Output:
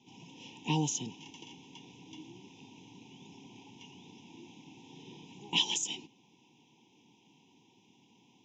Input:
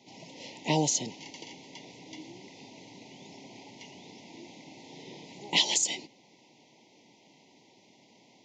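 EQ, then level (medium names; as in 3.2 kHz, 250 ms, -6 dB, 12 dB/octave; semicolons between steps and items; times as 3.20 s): distance through air 90 m; static phaser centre 3 kHz, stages 8; 0.0 dB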